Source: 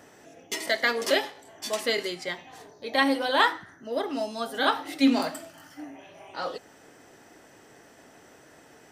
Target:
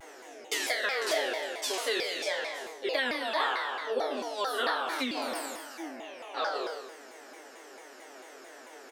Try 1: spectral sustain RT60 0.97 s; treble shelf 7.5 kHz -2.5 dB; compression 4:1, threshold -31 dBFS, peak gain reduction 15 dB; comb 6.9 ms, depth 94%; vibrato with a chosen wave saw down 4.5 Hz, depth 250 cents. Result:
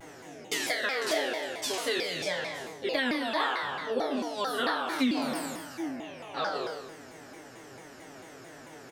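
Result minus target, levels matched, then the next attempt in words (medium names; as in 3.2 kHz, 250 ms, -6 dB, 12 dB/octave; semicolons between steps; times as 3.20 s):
250 Hz band +7.5 dB
spectral sustain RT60 0.97 s; treble shelf 7.5 kHz -2.5 dB; compression 4:1, threshold -31 dBFS, peak gain reduction 15 dB; high-pass 350 Hz 24 dB/octave; comb 6.9 ms, depth 94%; vibrato with a chosen wave saw down 4.5 Hz, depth 250 cents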